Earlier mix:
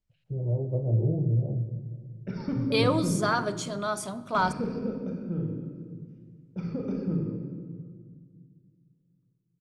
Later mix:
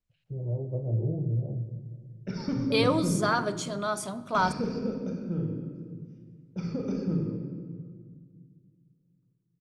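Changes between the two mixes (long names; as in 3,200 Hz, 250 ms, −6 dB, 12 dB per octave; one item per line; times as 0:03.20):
first voice −3.5 dB
background: remove high-frequency loss of the air 200 metres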